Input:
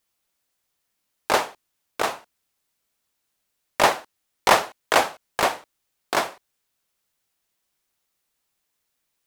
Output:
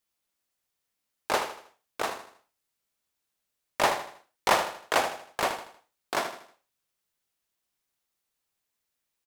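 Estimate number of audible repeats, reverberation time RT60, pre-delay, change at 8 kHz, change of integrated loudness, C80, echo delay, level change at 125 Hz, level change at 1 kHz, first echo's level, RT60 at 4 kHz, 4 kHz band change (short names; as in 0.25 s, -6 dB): 4, none, none, -6.0 dB, -6.0 dB, none, 79 ms, -6.0 dB, -6.0 dB, -9.5 dB, none, -6.0 dB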